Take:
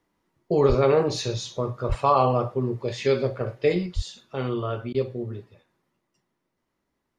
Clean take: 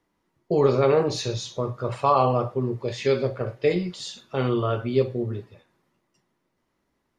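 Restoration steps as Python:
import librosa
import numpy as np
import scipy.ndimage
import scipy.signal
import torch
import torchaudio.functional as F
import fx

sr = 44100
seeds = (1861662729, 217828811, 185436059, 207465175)

y = fx.fix_deplosive(x, sr, at_s=(0.68, 1.88, 3.95))
y = fx.fix_interpolate(y, sr, at_s=(4.93,), length_ms=13.0)
y = fx.gain(y, sr, db=fx.steps((0.0, 0.0), (3.86, 4.0)))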